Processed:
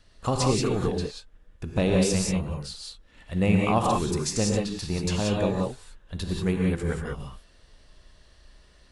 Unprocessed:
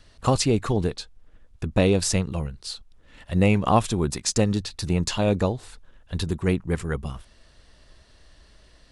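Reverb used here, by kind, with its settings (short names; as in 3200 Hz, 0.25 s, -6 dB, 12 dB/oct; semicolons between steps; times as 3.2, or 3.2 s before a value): non-linear reverb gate 0.21 s rising, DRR -1 dB; gain -5.5 dB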